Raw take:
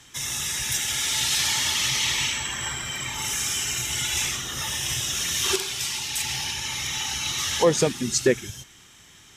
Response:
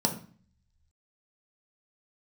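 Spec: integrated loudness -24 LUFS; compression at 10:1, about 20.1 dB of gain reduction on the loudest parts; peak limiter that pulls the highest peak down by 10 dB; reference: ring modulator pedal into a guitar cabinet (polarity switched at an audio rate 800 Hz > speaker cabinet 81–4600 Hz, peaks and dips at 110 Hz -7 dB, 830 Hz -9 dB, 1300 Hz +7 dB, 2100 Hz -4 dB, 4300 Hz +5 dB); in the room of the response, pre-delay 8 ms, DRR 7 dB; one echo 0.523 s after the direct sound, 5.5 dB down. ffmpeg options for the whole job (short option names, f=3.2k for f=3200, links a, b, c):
-filter_complex "[0:a]acompressor=threshold=-35dB:ratio=10,alimiter=level_in=8.5dB:limit=-24dB:level=0:latency=1,volume=-8.5dB,aecho=1:1:523:0.531,asplit=2[a][b];[1:a]atrim=start_sample=2205,adelay=8[c];[b][c]afir=irnorm=-1:irlink=0,volume=-15.5dB[d];[a][d]amix=inputs=2:normalize=0,aeval=exprs='val(0)*sgn(sin(2*PI*800*n/s))':c=same,highpass=81,equalizer=f=110:t=q:w=4:g=-7,equalizer=f=830:t=q:w=4:g=-9,equalizer=f=1.3k:t=q:w=4:g=7,equalizer=f=2.1k:t=q:w=4:g=-4,equalizer=f=4.3k:t=q:w=4:g=5,lowpass=f=4.6k:w=0.5412,lowpass=f=4.6k:w=1.3066,volume=16dB"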